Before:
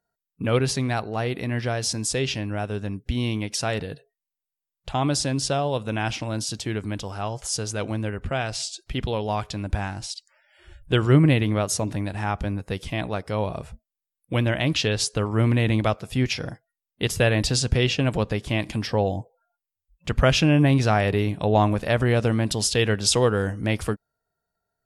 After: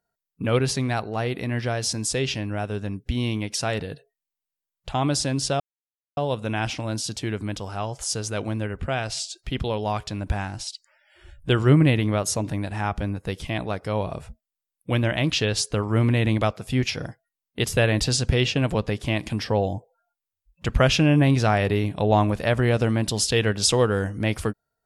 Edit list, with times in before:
5.60 s: insert silence 0.57 s

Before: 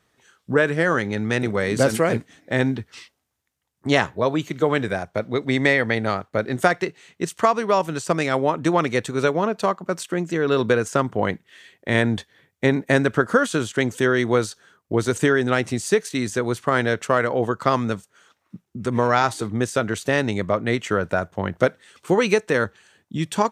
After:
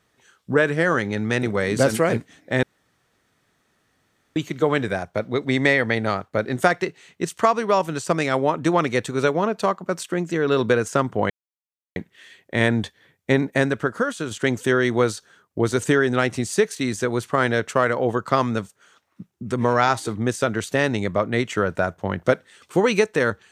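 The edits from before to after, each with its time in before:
2.63–4.36 s: room tone
11.30 s: insert silence 0.66 s
12.75–13.65 s: fade out quadratic, to -6 dB

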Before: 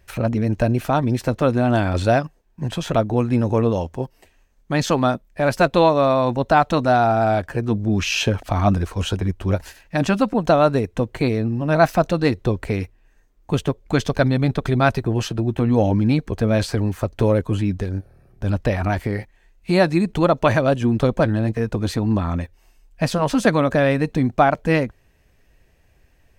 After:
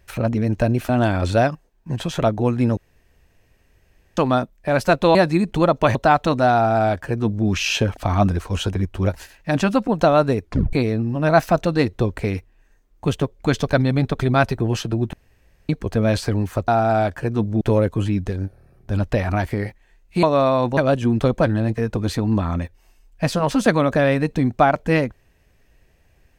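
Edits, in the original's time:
0.89–1.61 s: delete
3.49–4.89 s: room tone
5.87–6.41 s: swap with 19.76–20.56 s
7.00–7.93 s: copy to 17.14 s
10.89 s: tape stop 0.30 s
15.59–16.15 s: room tone

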